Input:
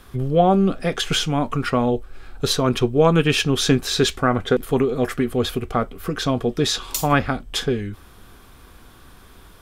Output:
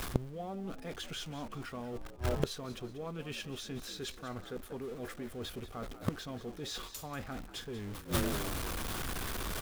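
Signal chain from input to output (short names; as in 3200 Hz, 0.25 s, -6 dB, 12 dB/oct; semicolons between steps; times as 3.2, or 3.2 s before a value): zero-crossing step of -25.5 dBFS; gate with hold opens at -17 dBFS; reverse; compressor 5:1, threshold -26 dBFS, peak gain reduction 14.5 dB; reverse; frequency-shifting echo 0.188 s, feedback 38%, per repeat +65 Hz, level -14 dB; flipped gate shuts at -28 dBFS, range -28 dB; gain +14 dB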